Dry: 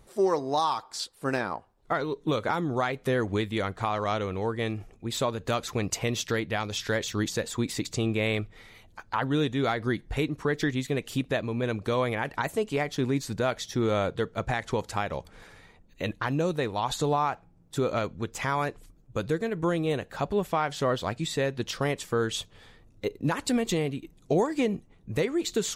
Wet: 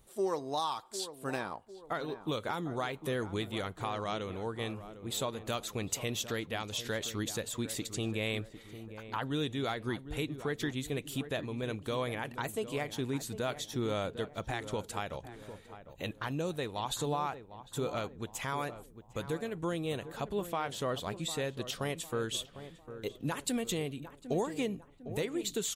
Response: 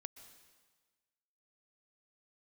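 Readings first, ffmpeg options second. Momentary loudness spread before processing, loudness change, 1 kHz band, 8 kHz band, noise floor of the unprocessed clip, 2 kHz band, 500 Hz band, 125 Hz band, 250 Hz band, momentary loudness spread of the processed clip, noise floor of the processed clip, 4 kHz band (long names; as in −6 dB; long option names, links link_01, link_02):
7 LU, −7.0 dB, −8.0 dB, −2.5 dB, −58 dBFS, −7.5 dB, −7.5 dB, −7.5 dB, −7.5 dB, 8 LU, −56 dBFS, −4.0 dB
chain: -filter_complex "[0:a]aexciter=amount=1.7:drive=4.4:freq=2800,asplit=2[link_01][link_02];[link_02]adelay=752,lowpass=frequency=1200:poles=1,volume=-11.5dB,asplit=2[link_03][link_04];[link_04]adelay=752,lowpass=frequency=1200:poles=1,volume=0.48,asplit=2[link_05][link_06];[link_06]adelay=752,lowpass=frequency=1200:poles=1,volume=0.48,asplit=2[link_07][link_08];[link_08]adelay=752,lowpass=frequency=1200:poles=1,volume=0.48,asplit=2[link_09][link_10];[link_10]adelay=752,lowpass=frequency=1200:poles=1,volume=0.48[link_11];[link_03][link_05][link_07][link_09][link_11]amix=inputs=5:normalize=0[link_12];[link_01][link_12]amix=inputs=2:normalize=0,volume=-8dB"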